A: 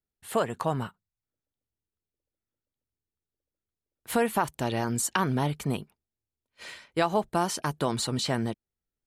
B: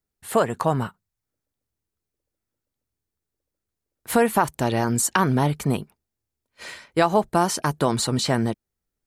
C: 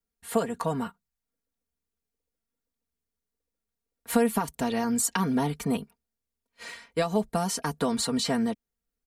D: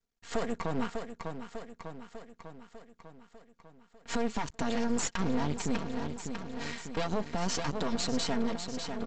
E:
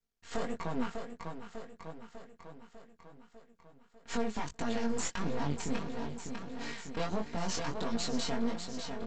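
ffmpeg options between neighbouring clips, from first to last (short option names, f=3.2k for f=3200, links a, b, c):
-af "equalizer=f=3.1k:w=1.7:g=-4,volume=6.5dB"
-filter_complex "[0:a]aecho=1:1:4.3:0.81,acrossover=split=440|3000[a][b][c];[b]acompressor=threshold=-22dB:ratio=6[d];[a][d][c]amix=inputs=3:normalize=0,volume=-6dB"
-af "aecho=1:1:598|1196|1794|2392|2990|3588|4186:0.282|0.169|0.101|0.0609|0.0365|0.0219|0.0131,aresample=16000,aeval=exprs='max(val(0),0)':c=same,aresample=44100,alimiter=limit=-24dB:level=0:latency=1:release=107,volume=4.5dB"
-af "flanger=delay=17.5:depth=6:speed=1.5"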